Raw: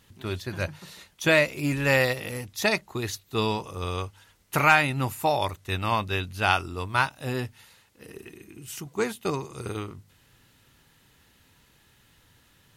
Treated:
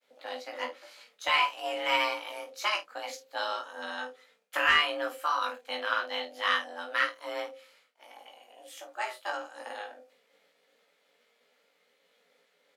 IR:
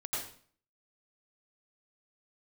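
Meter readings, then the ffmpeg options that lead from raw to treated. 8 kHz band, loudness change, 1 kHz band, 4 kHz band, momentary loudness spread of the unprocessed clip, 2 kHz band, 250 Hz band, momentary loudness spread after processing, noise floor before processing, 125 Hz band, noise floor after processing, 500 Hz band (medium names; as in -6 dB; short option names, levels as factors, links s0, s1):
-10.0 dB, -4.5 dB, -3.5 dB, +1.0 dB, 18 LU, -3.5 dB, -16.5 dB, 16 LU, -61 dBFS, under -35 dB, -71 dBFS, -8.5 dB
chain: -filter_complex "[0:a]bandreject=f=60:t=h:w=6,bandreject=f=120:t=h:w=6,agate=range=0.0224:threshold=0.00158:ratio=3:detection=peak,afreqshift=410,equalizer=f=710:w=1.1:g=-10,acontrast=60,asoftclip=type=hard:threshold=0.562,tremolo=f=250:d=0.571,lowpass=f=1700:p=1,asplit=2[s0][s1];[s1]adelay=24,volume=0.335[s2];[s0][s2]amix=inputs=2:normalize=0,aecho=1:1:17|51:0.631|0.299,volume=0.631"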